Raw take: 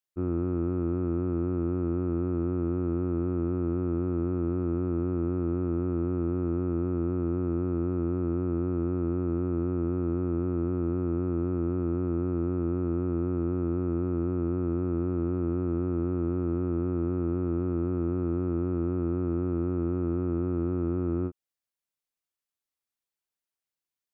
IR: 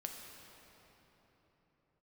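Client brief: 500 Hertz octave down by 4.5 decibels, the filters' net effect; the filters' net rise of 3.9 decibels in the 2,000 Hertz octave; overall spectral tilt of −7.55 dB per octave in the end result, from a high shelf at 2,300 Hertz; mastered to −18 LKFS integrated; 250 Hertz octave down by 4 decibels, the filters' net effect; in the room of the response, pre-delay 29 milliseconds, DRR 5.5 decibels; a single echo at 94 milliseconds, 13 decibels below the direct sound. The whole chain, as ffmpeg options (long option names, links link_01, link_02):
-filter_complex "[0:a]equalizer=frequency=250:width_type=o:gain=-3.5,equalizer=frequency=500:width_type=o:gain=-5.5,equalizer=frequency=2000:width_type=o:gain=4.5,highshelf=frequency=2300:gain=4,aecho=1:1:94:0.224,asplit=2[link_01][link_02];[1:a]atrim=start_sample=2205,adelay=29[link_03];[link_02][link_03]afir=irnorm=-1:irlink=0,volume=-4dB[link_04];[link_01][link_04]amix=inputs=2:normalize=0,volume=13dB"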